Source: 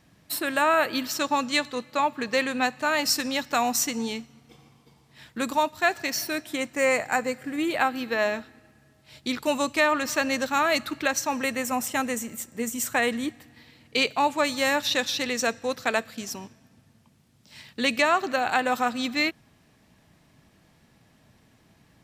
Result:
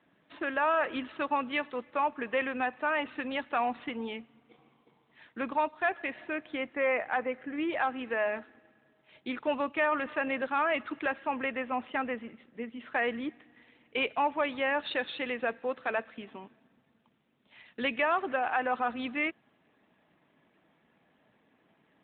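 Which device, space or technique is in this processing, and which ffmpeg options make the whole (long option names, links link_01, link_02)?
telephone: -filter_complex "[0:a]asplit=3[link_01][link_02][link_03];[link_01]afade=type=out:start_time=12.3:duration=0.02[link_04];[link_02]equalizer=frequency=910:width_type=o:width=3:gain=-4.5,afade=type=in:start_time=12.3:duration=0.02,afade=type=out:start_time=12.79:duration=0.02[link_05];[link_03]afade=type=in:start_time=12.79:duration=0.02[link_06];[link_04][link_05][link_06]amix=inputs=3:normalize=0,highpass=270,lowpass=3200,asoftclip=type=tanh:threshold=-15dB,volume=-3dB" -ar 8000 -c:a libopencore_amrnb -b:a 12200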